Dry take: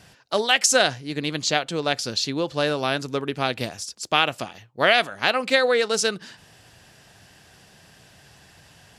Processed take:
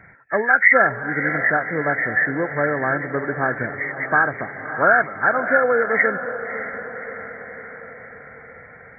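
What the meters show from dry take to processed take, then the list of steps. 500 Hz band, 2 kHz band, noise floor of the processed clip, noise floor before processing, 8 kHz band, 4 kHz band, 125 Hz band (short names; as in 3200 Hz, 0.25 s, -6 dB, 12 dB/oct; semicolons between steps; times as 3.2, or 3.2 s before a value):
+2.0 dB, +8.0 dB, -44 dBFS, -53 dBFS, under -40 dB, under -40 dB, +2.0 dB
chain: nonlinear frequency compression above 1300 Hz 4:1; diffused feedback echo 0.591 s, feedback 59%, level -11 dB; gain +1.5 dB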